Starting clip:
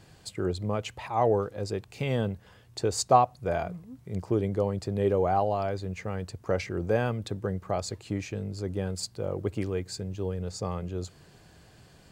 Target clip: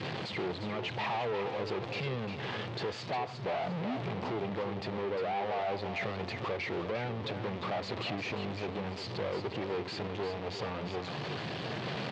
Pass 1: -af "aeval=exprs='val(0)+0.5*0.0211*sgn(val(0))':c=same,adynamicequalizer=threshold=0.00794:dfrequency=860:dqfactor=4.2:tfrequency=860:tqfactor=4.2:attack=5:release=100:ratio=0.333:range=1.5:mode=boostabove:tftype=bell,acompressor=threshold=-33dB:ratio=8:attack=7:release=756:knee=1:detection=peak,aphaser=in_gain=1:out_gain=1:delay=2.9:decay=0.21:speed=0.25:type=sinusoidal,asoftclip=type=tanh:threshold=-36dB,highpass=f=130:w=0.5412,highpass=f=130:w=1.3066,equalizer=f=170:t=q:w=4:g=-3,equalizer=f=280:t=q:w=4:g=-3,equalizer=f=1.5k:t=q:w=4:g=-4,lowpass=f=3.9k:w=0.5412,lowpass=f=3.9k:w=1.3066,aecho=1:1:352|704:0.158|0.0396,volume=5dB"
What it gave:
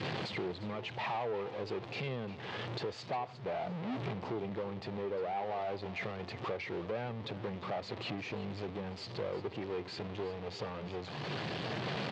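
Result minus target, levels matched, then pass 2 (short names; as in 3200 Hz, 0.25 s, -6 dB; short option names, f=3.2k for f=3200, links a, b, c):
compressor: peak gain reduction +7 dB; echo-to-direct -7.5 dB
-af "aeval=exprs='val(0)+0.5*0.0211*sgn(val(0))':c=same,adynamicequalizer=threshold=0.00794:dfrequency=860:dqfactor=4.2:tfrequency=860:tqfactor=4.2:attack=5:release=100:ratio=0.333:range=1.5:mode=boostabove:tftype=bell,acompressor=threshold=-25dB:ratio=8:attack=7:release=756:knee=1:detection=peak,aphaser=in_gain=1:out_gain=1:delay=2.9:decay=0.21:speed=0.25:type=sinusoidal,asoftclip=type=tanh:threshold=-36dB,highpass=f=130:w=0.5412,highpass=f=130:w=1.3066,equalizer=f=170:t=q:w=4:g=-3,equalizer=f=280:t=q:w=4:g=-3,equalizer=f=1.5k:t=q:w=4:g=-4,lowpass=f=3.9k:w=0.5412,lowpass=f=3.9k:w=1.3066,aecho=1:1:352|704|1056:0.376|0.094|0.0235,volume=5dB"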